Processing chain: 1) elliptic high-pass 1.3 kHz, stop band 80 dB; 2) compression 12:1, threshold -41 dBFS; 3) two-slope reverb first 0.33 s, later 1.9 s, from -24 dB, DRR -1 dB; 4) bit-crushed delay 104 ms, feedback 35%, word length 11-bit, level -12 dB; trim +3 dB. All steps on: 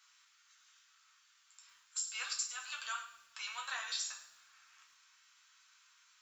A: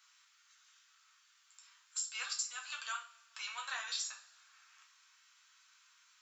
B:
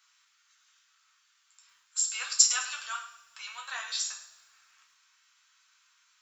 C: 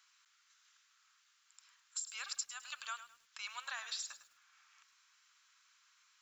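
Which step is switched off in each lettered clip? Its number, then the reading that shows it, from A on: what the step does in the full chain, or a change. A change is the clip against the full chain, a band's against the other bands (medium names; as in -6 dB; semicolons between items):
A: 4, momentary loudness spread change -3 LU; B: 2, mean gain reduction 5.5 dB; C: 3, momentary loudness spread change -3 LU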